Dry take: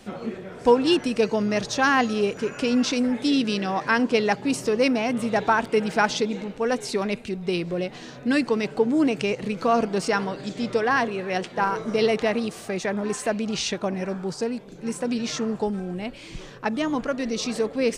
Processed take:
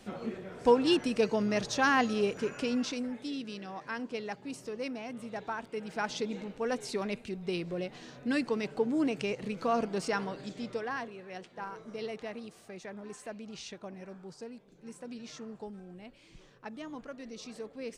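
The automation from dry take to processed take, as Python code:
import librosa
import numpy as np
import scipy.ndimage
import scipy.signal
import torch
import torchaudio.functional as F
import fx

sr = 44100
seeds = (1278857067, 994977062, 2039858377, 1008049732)

y = fx.gain(x, sr, db=fx.line((2.45, -6.0), (3.35, -16.5), (5.76, -16.5), (6.33, -8.5), (10.38, -8.5), (11.18, -17.5)))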